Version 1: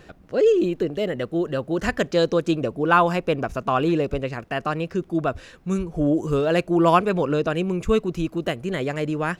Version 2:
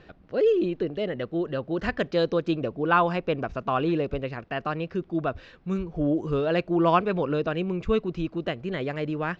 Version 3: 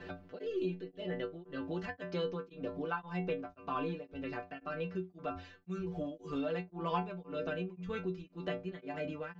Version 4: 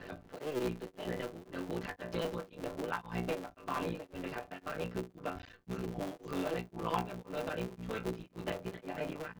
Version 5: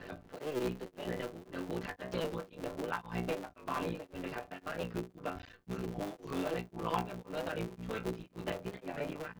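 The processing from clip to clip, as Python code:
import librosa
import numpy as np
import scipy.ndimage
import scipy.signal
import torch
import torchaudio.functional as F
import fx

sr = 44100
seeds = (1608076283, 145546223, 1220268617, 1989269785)

y1 = scipy.signal.sosfilt(scipy.signal.butter(4, 4700.0, 'lowpass', fs=sr, output='sos'), x)
y1 = y1 * 10.0 ** (-4.0 / 20.0)
y2 = fx.stiff_resonator(y1, sr, f0_hz=88.0, decay_s=0.42, stiffness=0.008)
y2 = fx.tremolo_shape(y2, sr, shape='triangle', hz=1.9, depth_pct=100)
y2 = fx.band_squash(y2, sr, depth_pct=70)
y2 = y2 * 10.0 ** (3.5 / 20.0)
y3 = fx.cycle_switch(y2, sr, every=3, mode='muted')
y3 = y3 * 10.0 ** (1.5 / 20.0)
y4 = fx.record_warp(y3, sr, rpm=45.0, depth_cents=100.0)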